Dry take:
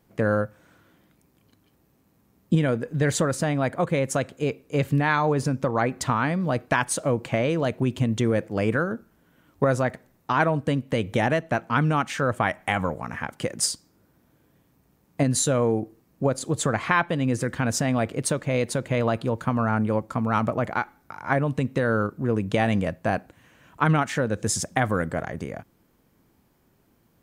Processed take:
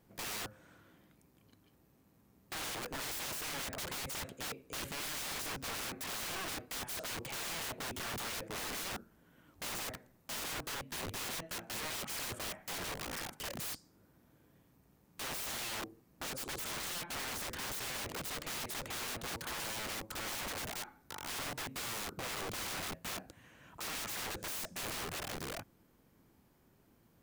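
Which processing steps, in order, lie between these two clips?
limiter -15 dBFS, peak gain reduction 9 dB; wrapped overs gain 31.5 dB; gain -4 dB

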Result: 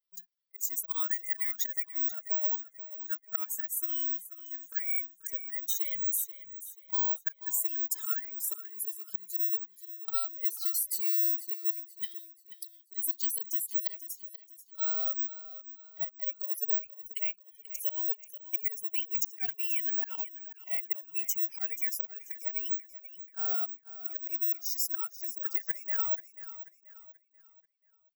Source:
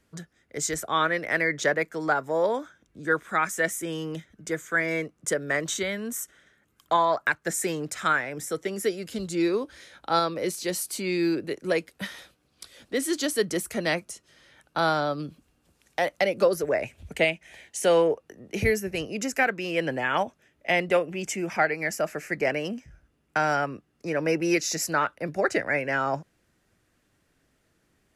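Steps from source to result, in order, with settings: per-bin expansion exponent 2; HPF 190 Hz 6 dB/oct; auto swell 0.591 s; comb 3 ms, depth 94%; in parallel at 0 dB: vocal rider within 3 dB; on the sum: careless resampling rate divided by 2×, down none, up zero stuff; compressor 6:1, threshold -32 dBFS, peak gain reduction 19.5 dB; tilt +3.5 dB/oct; on a send: feedback echo 0.485 s, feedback 38%, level -14 dB; on the sum: gain -6.5 dB

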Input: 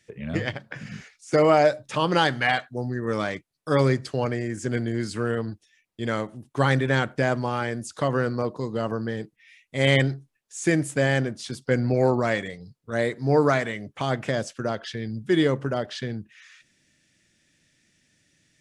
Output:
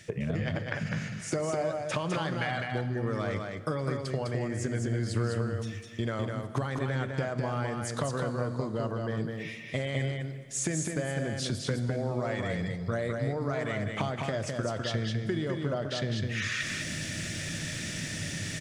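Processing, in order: thirty-one-band EQ 100 Hz +10 dB, 160 Hz +7 dB, 630 Hz +5 dB, 1250 Hz +3 dB; reverse; upward compressor, threshold -23 dBFS; reverse; limiter -12 dBFS, peak gain reduction 9 dB; compressor 10:1, threshold -34 dBFS, peak gain reduction 18 dB; echo 0.205 s -4 dB; on a send at -13 dB: reverb RT60 3.0 s, pre-delay 26 ms; on the sum: gain +5 dB

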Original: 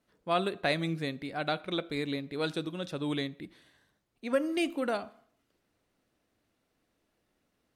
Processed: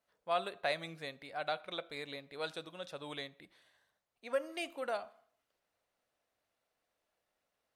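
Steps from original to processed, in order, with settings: resonant low shelf 430 Hz -9.5 dB, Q 1.5; gain -6 dB

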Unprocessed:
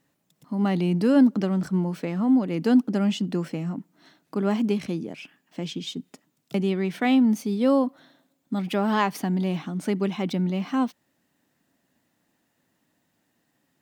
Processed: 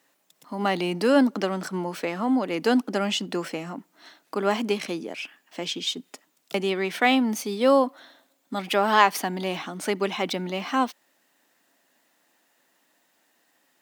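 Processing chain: Bessel high-pass 570 Hz, order 2; gain +7.5 dB

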